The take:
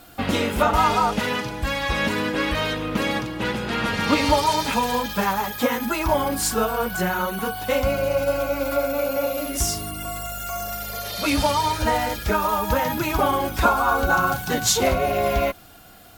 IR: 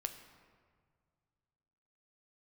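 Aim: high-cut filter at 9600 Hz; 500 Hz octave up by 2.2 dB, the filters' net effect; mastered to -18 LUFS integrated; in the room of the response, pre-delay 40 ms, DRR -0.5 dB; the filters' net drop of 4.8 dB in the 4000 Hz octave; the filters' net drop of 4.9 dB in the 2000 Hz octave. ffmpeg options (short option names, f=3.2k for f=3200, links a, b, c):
-filter_complex "[0:a]lowpass=9.6k,equalizer=f=500:t=o:g=3,equalizer=f=2k:t=o:g=-6.5,equalizer=f=4k:t=o:g=-4,asplit=2[a][b];[1:a]atrim=start_sample=2205,adelay=40[c];[b][c]afir=irnorm=-1:irlink=0,volume=1.5dB[d];[a][d]amix=inputs=2:normalize=0,volume=1.5dB"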